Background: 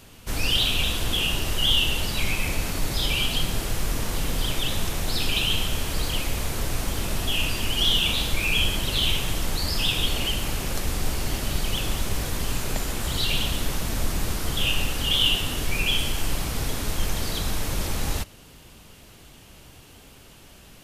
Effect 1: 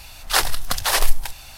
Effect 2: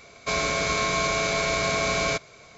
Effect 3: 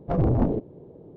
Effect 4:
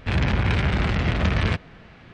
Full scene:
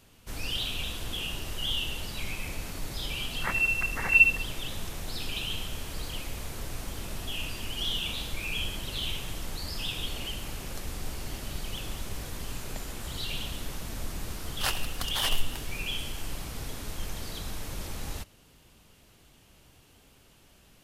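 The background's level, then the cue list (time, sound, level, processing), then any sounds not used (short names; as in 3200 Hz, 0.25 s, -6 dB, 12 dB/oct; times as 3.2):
background -10 dB
3.11 add 1 -11.5 dB + inverted band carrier 2700 Hz
14.3 add 1 -12.5 dB
not used: 2, 3, 4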